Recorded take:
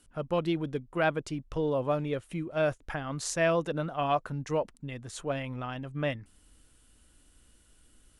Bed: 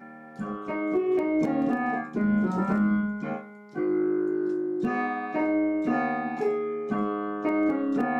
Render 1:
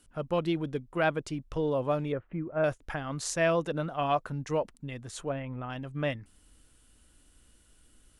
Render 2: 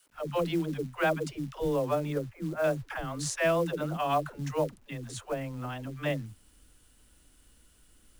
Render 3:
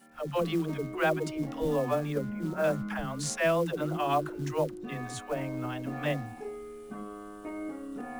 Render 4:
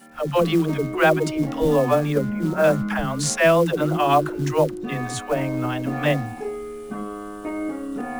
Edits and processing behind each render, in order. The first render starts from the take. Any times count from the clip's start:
0:02.12–0:02.64: low-pass filter 1,800 Hz 24 dB per octave; 0:05.29–0:05.70: high-frequency loss of the air 480 metres
all-pass dispersion lows, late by 109 ms, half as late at 360 Hz; log-companded quantiser 6 bits
mix in bed −13.5 dB
level +10 dB

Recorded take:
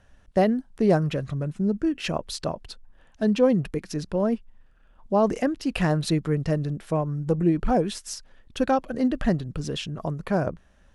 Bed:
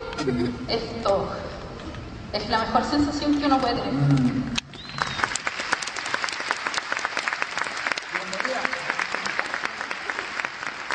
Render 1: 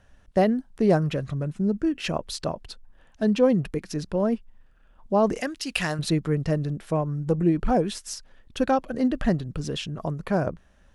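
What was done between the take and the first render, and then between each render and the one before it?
0:05.41–0:05.99: tilt shelving filter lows −8.5 dB, about 1,300 Hz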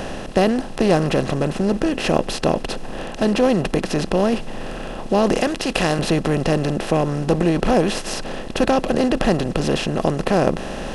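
compressor on every frequency bin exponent 0.4
reversed playback
upward compression, threshold −22 dBFS
reversed playback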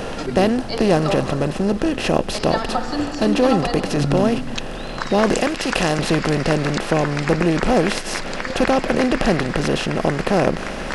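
mix in bed −2 dB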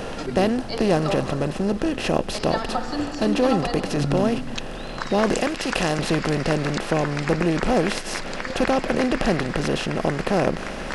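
level −3.5 dB

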